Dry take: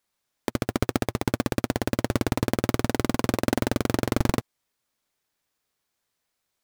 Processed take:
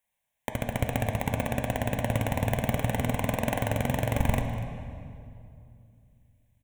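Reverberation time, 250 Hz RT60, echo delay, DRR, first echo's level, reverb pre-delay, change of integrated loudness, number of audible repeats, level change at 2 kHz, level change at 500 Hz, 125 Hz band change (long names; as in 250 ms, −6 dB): 2.5 s, 3.1 s, 243 ms, 4.0 dB, −17.0 dB, 13 ms, −2.5 dB, 1, −1.0 dB, −3.0 dB, +1.0 dB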